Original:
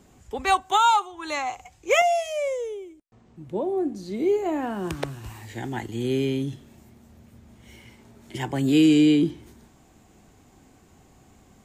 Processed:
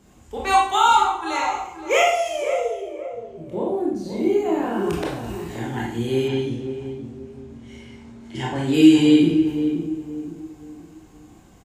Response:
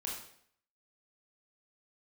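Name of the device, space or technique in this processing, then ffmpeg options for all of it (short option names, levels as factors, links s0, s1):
bathroom: -filter_complex "[1:a]atrim=start_sample=2205[s0];[0:a][s0]afir=irnorm=-1:irlink=0,asettb=1/sr,asplit=3[s1][s2][s3];[s1]atrim=end=6.284[s4];[s2]atrim=start=6.28:end=8.74,asetpts=PTS-STARTPTS,afade=t=in:d=0.004:c=qsin,afade=t=out:st=2.456:d=0.004:c=qsin,lowpass=7400[s5];[s3]atrim=start=8.736[s6];[s4][s5]acrossfade=d=0.004:c1=hsin:c2=qsin[s7];[s7][s6]acrossfade=d=0.004:c1=qsin:c2=hsin,asplit=2[s8][s9];[s9]adelay=523,lowpass=f=950:p=1,volume=0.422,asplit=2[s10][s11];[s11]adelay=523,lowpass=f=950:p=1,volume=0.37,asplit=2[s12][s13];[s13]adelay=523,lowpass=f=950:p=1,volume=0.37,asplit=2[s14][s15];[s15]adelay=523,lowpass=f=950:p=1,volume=0.37[s16];[s8][s10][s12][s14][s16]amix=inputs=5:normalize=0,volume=1.33"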